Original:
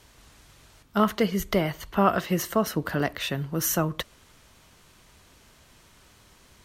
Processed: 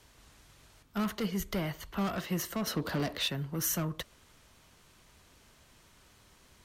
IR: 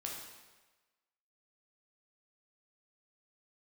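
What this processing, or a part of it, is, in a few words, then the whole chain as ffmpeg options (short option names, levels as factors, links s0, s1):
one-band saturation: -filter_complex "[0:a]asettb=1/sr,asplit=3[s0][s1][s2];[s0]atrim=end=2.674[s3];[s1]atrim=start=2.67:end=3.28,asetpts=PTS-STARTPTS,afade=t=in:d=0.004:c=qsin,afade=t=out:st=0.606:d=0.004:c=qsin,equalizer=f=250:t=o:w=1:g=5,equalizer=f=500:t=o:w=1:g=7,equalizer=f=1000:t=o:w=1:g=5,equalizer=f=4000:t=o:w=1:g=9[s4];[s2]atrim=start=3.276[s5];[s3][s4]acrossfade=d=0.004:c1=hsin:c2=qsin[s6];[s6][s5]acrossfade=d=0.004:c1=qsin:c2=hsin,acrossover=split=220|3700[s7][s8][s9];[s8]asoftclip=type=tanh:threshold=0.0376[s10];[s7][s10][s9]amix=inputs=3:normalize=0,volume=0.562"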